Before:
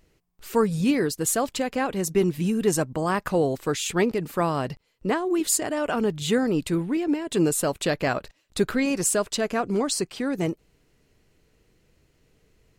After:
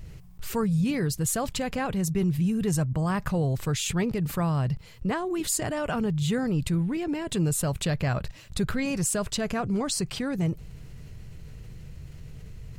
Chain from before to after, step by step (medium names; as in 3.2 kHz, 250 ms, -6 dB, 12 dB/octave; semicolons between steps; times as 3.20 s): resonant low shelf 200 Hz +12 dB, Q 1.5; level flattener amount 50%; trim -8.5 dB